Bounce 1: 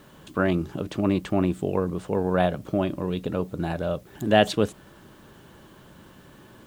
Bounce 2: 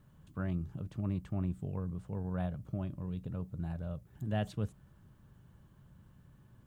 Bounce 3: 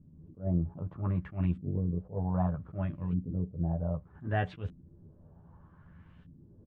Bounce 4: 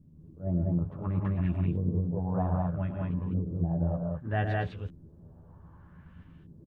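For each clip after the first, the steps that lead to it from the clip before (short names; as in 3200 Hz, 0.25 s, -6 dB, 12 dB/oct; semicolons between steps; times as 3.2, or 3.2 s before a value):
EQ curve 130 Hz 0 dB, 340 Hz -18 dB, 1200 Hz -15 dB, 3700 Hz -20 dB, 10000 Hz -15 dB; gain -3.5 dB
LFO low-pass saw up 0.64 Hz 250–3100 Hz; doubler 12 ms -3.5 dB; attack slew limiter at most 230 dB/s; gain +2.5 dB
loudspeakers at several distances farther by 39 m -8 dB, 55 m -9 dB, 69 m -1 dB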